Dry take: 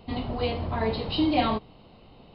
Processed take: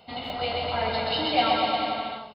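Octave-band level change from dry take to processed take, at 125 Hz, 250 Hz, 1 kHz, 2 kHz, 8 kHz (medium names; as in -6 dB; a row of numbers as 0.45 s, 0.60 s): -7.0 dB, -6.0 dB, +5.5 dB, +6.5 dB, no reading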